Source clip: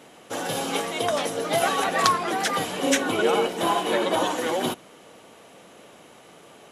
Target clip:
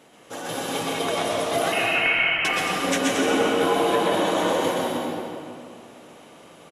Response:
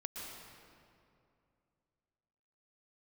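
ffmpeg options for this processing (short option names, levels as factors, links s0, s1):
-filter_complex "[0:a]aecho=1:1:130|227.5|300.6|355.5|396.6:0.631|0.398|0.251|0.158|0.1,asettb=1/sr,asplit=3[s0][s1][s2];[s0]atrim=end=1.724[s3];[s1]atrim=start=1.72:end=2.45,asetpts=PTS-STARTPTS,afade=t=in:d=0.004:c=qsin,afade=t=out:st=0.726:d=0.004:c=qsin,lowpass=f=2800:t=q:w=0.5098,lowpass=f=2800:t=q:w=0.6013,lowpass=f=2800:t=q:w=0.9,lowpass=f=2800:t=q:w=2.563,afreqshift=-3300[s4];[s2]atrim=start=2.446[s5];[s3][s4]acrossfade=d=0.004:c1=hsin:c2=qsin[s6];[s6][s5]acrossfade=d=0.004:c1=qsin:c2=hsin[s7];[1:a]atrim=start_sample=2205[s8];[s7][s8]afir=irnorm=-1:irlink=0"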